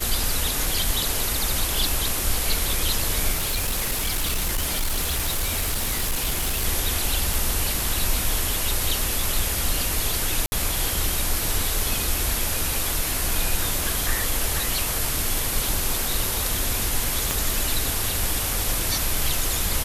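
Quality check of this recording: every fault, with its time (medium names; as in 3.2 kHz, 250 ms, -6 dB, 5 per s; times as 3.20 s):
3.32–6.65 s: clipped -20 dBFS
7.34 s: pop
10.46–10.52 s: dropout 60 ms
17.31 s: pop -8 dBFS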